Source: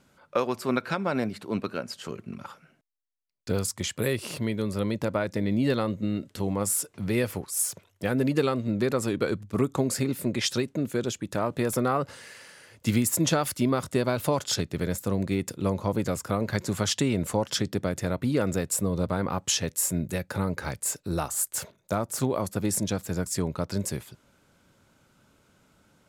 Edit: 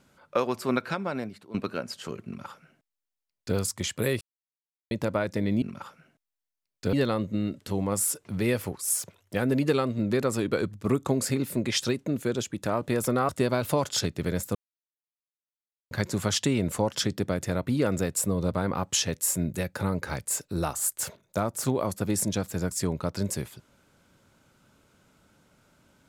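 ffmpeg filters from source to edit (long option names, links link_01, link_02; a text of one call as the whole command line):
ffmpeg -i in.wav -filter_complex "[0:a]asplit=9[link_01][link_02][link_03][link_04][link_05][link_06][link_07][link_08][link_09];[link_01]atrim=end=1.54,asetpts=PTS-STARTPTS,afade=type=out:start_time=0.77:duration=0.77:silence=0.16788[link_10];[link_02]atrim=start=1.54:end=4.21,asetpts=PTS-STARTPTS,afade=type=in:duration=0.004:curve=hsin:silence=0.16788,afade=type=out:start_time=2.666:duration=0.004:curve=hsin[link_11];[link_03]atrim=start=4.21:end=4.91,asetpts=PTS-STARTPTS,volume=0[link_12];[link_04]atrim=start=4.91:end=5.622,asetpts=PTS-STARTPTS,afade=type=in:duration=0.004:curve=hsin[link_13];[link_05]atrim=start=2.258:end=3.572[link_14];[link_06]atrim=start=5.618:end=11.982[link_15];[link_07]atrim=start=13.838:end=15.1,asetpts=PTS-STARTPTS,afade=type=out:start_time=1.258:duration=0.004:curve=hsin[link_16];[link_08]atrim=start=15.1:end=16.46,asetpts=PTS-STARTPTS,volume=0[link_17];[link_09]atrim=start=16.46,asetpts=PTS-STARTPTS,afade=type=in:duration=0.004:curve=hsin[link_18];[link_10][link_11][link_12][link_13]concat=n=4:v=0:a=1[link_19];[link_19][link_14]acrossfade=duration=0.004:curve1=hsin:curve2=hsin[link_20];[link_20][link_15]acrossfade=duration=0.004:curve1=hsin:curve2=hsin[link_21];[link_16][link_17][link_18]concat=n=3:v=0:a=1[link_22];[link_21][link_22]acrossfade=duration=0.004:curve1=hsin:curve2=hsin" out.wav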